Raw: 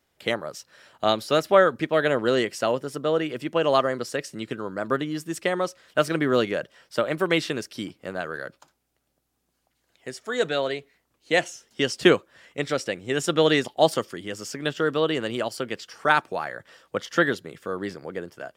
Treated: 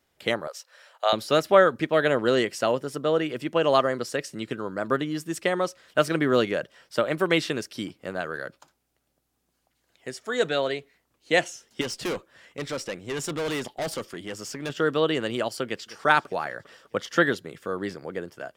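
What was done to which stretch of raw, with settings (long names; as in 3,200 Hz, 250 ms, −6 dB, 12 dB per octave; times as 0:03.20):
0:00.47–0:01.13: Chebyshev high-pass filter 500 Hz, order 4
0:11.81–0:14.70: tube saturation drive 26 dB, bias 0.25
0:15.66–0:16.06: delay throw 200 ms, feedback 65%, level −17 dB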